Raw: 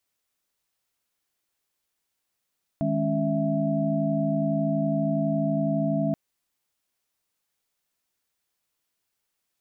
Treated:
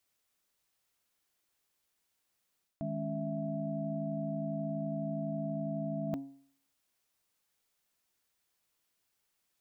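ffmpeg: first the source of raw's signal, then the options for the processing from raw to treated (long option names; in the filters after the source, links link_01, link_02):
-f lavfi -i "aevalsrc='0.0422*(sin(2*PI*155.56*t)+sin(2*PI*207.65*t)+sin(2*PI*277.18*t)+sin(2*PI*659.26*t))':duration=3.33:sample_rate=44100"
-af "bandreject=frequency=137.3:width_type=h:width=4,bandreject=frequency=274.6:width_type=h:width=4,bandreject=frequency=411.9:width_type=h:width=4,bandreject=frequency=549.2:width_type=h:width=4,bandreject=frequency=686.5:width_type=h:width=4,bandreject=frequency=823.8:width_type=h:width=4,bandreject=frequency=961.1:width_type=h:width=4,areverse,acompressor=threshold=-34dB:ratio=5,areverse"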